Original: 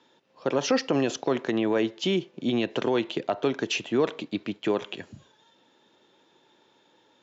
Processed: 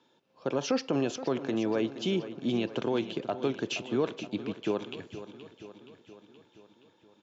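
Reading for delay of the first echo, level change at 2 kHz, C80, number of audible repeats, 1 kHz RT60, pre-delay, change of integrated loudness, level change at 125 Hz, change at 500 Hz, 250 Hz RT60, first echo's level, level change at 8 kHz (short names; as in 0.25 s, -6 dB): 0.473 s, -6.5 dB, none, 5, none, none, -4.5 dB, -2.0 dB, -4.5 dB, none, -13.0 dB, n/a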